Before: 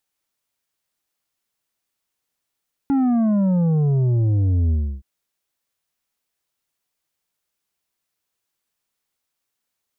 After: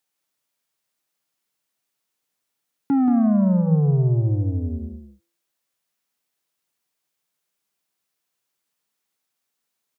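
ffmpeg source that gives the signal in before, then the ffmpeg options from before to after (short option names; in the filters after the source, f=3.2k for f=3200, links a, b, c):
-f lavfi -i "aevalsrc='0.158*clip((2.12-t)/0.31,0,1)*tanh(2.24*sin(2*PI*280*2.12/log(65/280)*(exp(log(65/280)*t/2.12)-1)))/tanh(2.24)':d=2.12:s=44100"
-filter_complex "[0:a]highpass=f=110:w=0.5412,highpass=f=110:w=1.3066,bandreject=f=169.4:t=h:w=4,bandreject=f=338.8:t=h:w=4,bandreject=f=508.2:t=h:w=4,bandreject=f=677.6:t=h:w=4,bandreject=f=847:t=h:w=4,bandreject=f=1.0164k:t=h:w=4,bandreject=f=1.1858k:t=h:w=4,bandreject=f=1.3552k:t=h:w=4,bandreject=f=1.5246k:t=h:w=4,bandreject=f=1.694k:t=h:w=4,bandreject=f=1.8634k:t=h:w=4,bandreject=f=2.0328k:t=h:w=4,bandreject=f=2.2022k:t=h:w=4,bandreject=f=2.3716k:t=h:w=4,bandreject=f=2.541k:t=h:w=4,bandreject=f=2.7104k:t=h:w=4,bandreject=f=2.8798k:t=h:w=4,bandreject=f=3.0492k:t=h:w=4,bandreject=f=3.2186k:t=h:w=4,bandreject=f=3.388k:t=h:w=4,bandreject=f=3.5574k:t=h:w=4,bandreject=f=3.7268k:t=h:w=4,bandreject=f=3.8962k:t=h:w=4,bandreject=f=4.0656k:t=h:w=4,bandreject=f=4.235k:t=h:w=4,bandreject=f=4.4044k:t=h:w=4,bandreject=f=4.5738k:t=h:w=4,bandreject=f=4.7432k:t=h:w=4,bandreject=f=4.9126k:t=h:w=4,asplit=2[a][b];[b]aecho=0:1:179:0.422[c];[a][c]amix=inputs=2:normalize=0"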